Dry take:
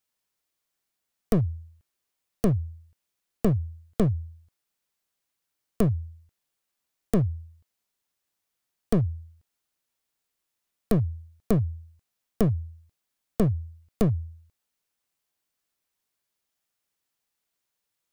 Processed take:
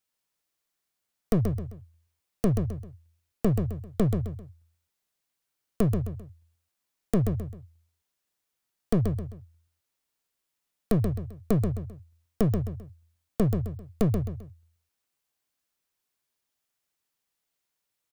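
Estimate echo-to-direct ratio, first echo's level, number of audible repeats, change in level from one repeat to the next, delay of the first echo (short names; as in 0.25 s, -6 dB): -5.5 dB, -6.0 dB, 3, -9.0 dB, 0.131 s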